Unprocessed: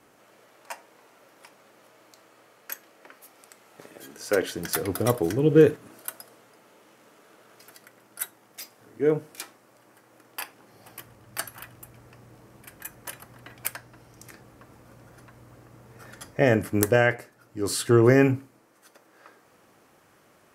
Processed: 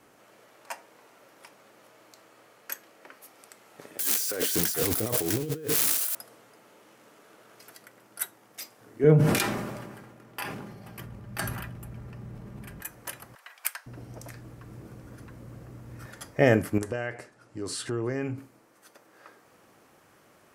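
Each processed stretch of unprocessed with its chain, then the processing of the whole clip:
3.99–6.15 s: zero-crossing glitches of -17.5 dBFS + compressor with a negative ratio -29 dBFS
9.04–12.81 s: tone controls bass +14 dB, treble -6 dB + comb 5 ms, depth 36% + decay stretcher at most 35 dB/s
13.35–16.06 s: bass shelf 380 Hz +9.5 dB + bands offset in time highs, lows 510 ms, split 810 Hz
16.78–18.38 s: low-pass 9.8 kHz 24 dB/octave + compression 2.5:1, threshold -33 dBFS
whole clip: none

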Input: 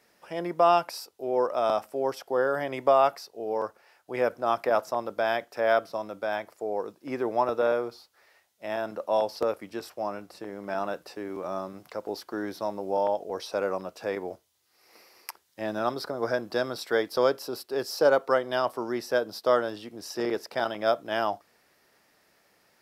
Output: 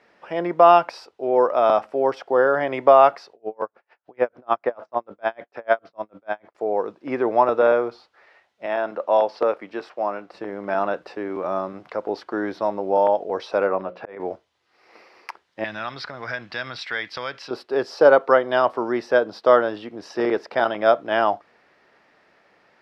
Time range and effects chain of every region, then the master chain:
3.33–6.55 s: distance through air 90 m + logarithmic tremolo 6.7 Hz, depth 38 dB
8.66–10.34 s: high-pass 300 Hz 6 dB/octave + treble shelf 7.8 kHz -8.5 dB
13.67–14.20 s: low-pass 3.1 kHz + hum notches 60/120/180/240/300/360/420/480/540/600 Hz + slow attack 400 ms
15.64–17.51 s: compression 2:1, threshold -28 dBFS + FFT filter 130 Hz 0 dB, 190 Hz -6 dB, 400 Hz -16 dB, 1.3 kHz -3 dB, 2.1 kHz +8 dB, 6.3 kHz +3 dB, 12 kHz -6 dB
whole clip: low-pass 2.7 kHz 12 dB/octave; bass shelf 180 Hz -7.5 dB; trim +8.5 dB

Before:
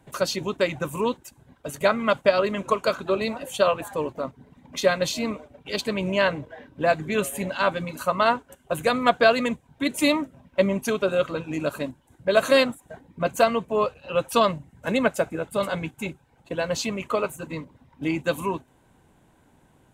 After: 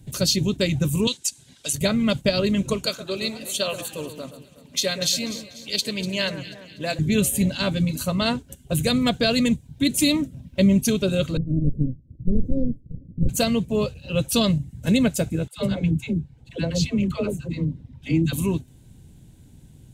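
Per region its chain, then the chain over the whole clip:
1.07–1.73 s: frequency weighting ITU-R 468 + three bands compressed up and down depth 40%
2.86–6.99 s: high-pass 660 Hz 6 dB/octave + echo whose repeats swap between lows and highs 122 ms, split 1.7 kHz, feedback 66%, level -10.5 dB
11.37–13.29 s: comb filter that takes the minimum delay 0.8 ms + elliptic low-pass 560 Hz, stop band 50 dB
15.48–18.33 s: low-pass 2.3 kHz 6 dB/octave + phase dispersion lows, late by 97 ms, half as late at 540 Hz
whole clip: FFT filter 130 Hz 0 dB, 1.1 kHz -27 dB, 4.2 kHz -6 dB; loudness maximiser +23.5 dB; trim -8.5 dB

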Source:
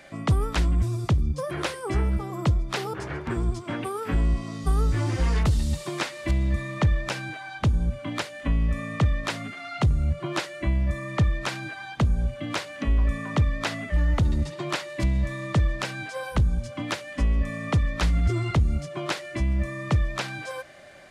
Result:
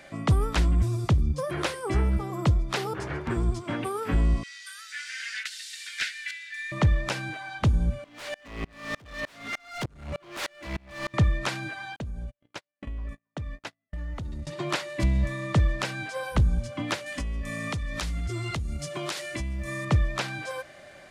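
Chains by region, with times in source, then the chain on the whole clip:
4.43–6.72 s: Chebyshev high-pass 1.5 kHz, order 6 + overdrive pedal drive 10 dB, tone 4.2 kHz, clips at -16 dBFS
8.04–11.14 s: overdrive pedal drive 21 dB, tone 4 kHz, clips at -13 dBFS + overload inside the chain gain 26 dB + sawtooth tremolo in dB swelling 3.3 Hz, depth 32 dB
11.96–14.47 s: gate -27 dBFS, range -53 dB + compression 5:1, threshold -33 dBFS
17.06–19.85 s: treble shelf 3.1 kHz +11 dB + compression, threshold -28 dBFS
whole clip: none

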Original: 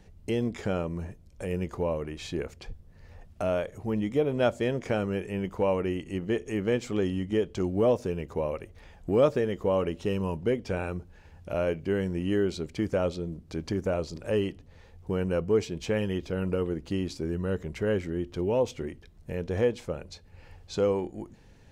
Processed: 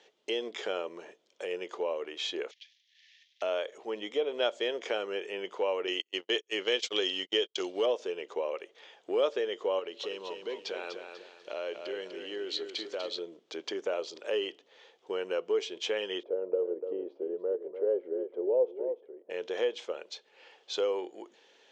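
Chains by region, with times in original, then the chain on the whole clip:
2.51–3.42 s: CVSD coder 32 kbps + steep high-pass 1.8 kHz 72 dB/octave + compression 2:1, threshold -60 dBFS
5.87–7.86 s: peaking EQ 4.7 kHz +12.5 dB 2 oct + gate -33 dBFS, range -39 dB
9.79–13.19 s: peaking EQ 4.2 kHz +12 dB 0.31 oct + compression 2.5:1, threshold -34 dBFS + bit-crushed delay 246 ms, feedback 35%, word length 10-bit, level -6.5 dB
16.23–19.30 s: resonant low-pass 520 Hz, resonance Q 2.5 + bass shelf 260 Hz -10 dB + delay 293 ms -11 dB
whole clip: elliptic band-pass 400–6700 Hz, stop band 60 dB; compression 1.5:1, threshold -32 dBFS; peaking EQ 3.3 kHz +12 dB 0.48 oct

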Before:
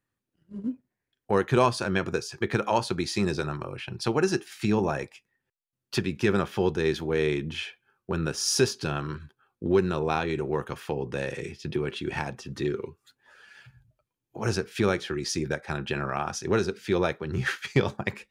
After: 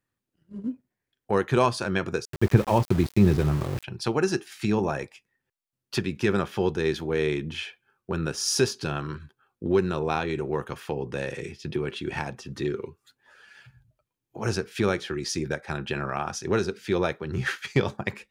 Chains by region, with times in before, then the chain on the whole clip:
2.25–3.84 s: RIAA curve playback + band-stop 1.4 kHz, Q 8.8 + small samples zeroed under -31.5 dBFS
whole clip: none

